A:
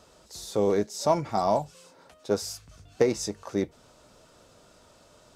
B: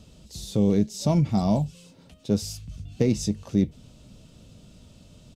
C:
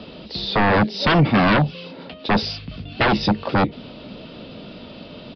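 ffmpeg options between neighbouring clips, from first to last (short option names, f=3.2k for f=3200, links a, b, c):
-filter_complex "[0:a]firequalizer=gain_entry='entry(200,0);entry(360,-14);entry(910,-22);entry(1500,-23);entry(2800,-9);entry(5000,-14)':delay=0.05:min_phase=1,asplit=2[a][b];[b]alimiter=level_in=3dB:limit=-24dB:level=0:latency=1,volume=-3dB,volume=2.5dB[c];[a][c]amix=inputs=2:normalize=0,volume=6.5dB"
-filter_complex "[0:a]acrossover=split=220|4300[a][b][c];[b]aeval=exprs='0.224*sin(PI/2*6.31*val(0)/0.224)':c=same[d];[a][d][c]amix=inputs=3:normalize=0,aresample=11025,aresample=44100"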